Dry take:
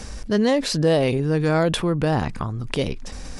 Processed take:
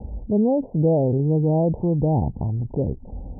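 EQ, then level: HPF 54 Hz 12 dB/oct; steep low-pass 900 Hz 96 dB/oct; low shelf 130 Hz +11.5 dB; -2.0 dB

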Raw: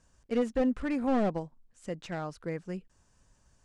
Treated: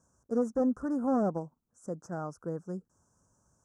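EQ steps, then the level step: HPF 95 Hz 12 dB/oct; elliptic band-stop 1400–5800 Hz, stop band 40 dB; 0.0 dB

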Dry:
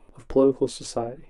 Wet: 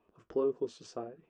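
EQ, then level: air absorption 110 m; speaker cabinet 130–7700 Hz, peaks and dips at 130 Hz -9 dB, 270 Hz -9 dB, 550 Hz -7 dB, 860 Hz -8 dB, 2100 Hz -9 dB, 4000 Hz -8 dB; -7.5 dB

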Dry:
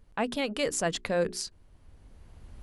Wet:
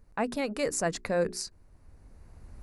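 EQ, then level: bell 3200 Hz -13.5 dB 0.4 oct; 0.0 dB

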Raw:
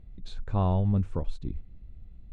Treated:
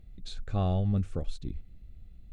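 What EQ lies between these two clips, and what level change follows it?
Butterworth band-stop 960 Hz, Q 4.1; high shelf 3000 Hz +11 dB; -2.5 dB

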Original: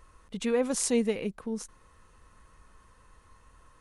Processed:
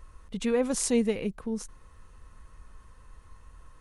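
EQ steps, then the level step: low shelf 110 Hz +10 dB; 0.0 dB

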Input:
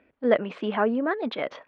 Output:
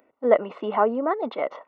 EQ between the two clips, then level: polynomial smoothing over 65 samples; tilt +4 dB/oct; low shelf 150 Hz -9 dB; +7.5 dB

